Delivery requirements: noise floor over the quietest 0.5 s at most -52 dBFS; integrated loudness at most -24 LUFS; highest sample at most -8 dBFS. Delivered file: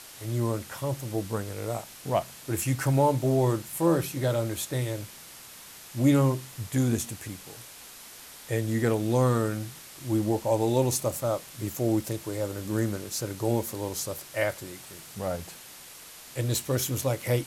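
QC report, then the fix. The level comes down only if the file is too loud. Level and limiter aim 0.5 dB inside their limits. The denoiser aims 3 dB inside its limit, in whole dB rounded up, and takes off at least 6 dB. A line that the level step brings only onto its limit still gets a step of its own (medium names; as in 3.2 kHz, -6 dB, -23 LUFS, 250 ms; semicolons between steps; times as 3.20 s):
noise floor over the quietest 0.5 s -47 dBFS: fail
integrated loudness -28.0 LUFS: pass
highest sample -11.5 dBFS: pass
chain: noise reduction 8 dB, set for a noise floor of -47 dBFS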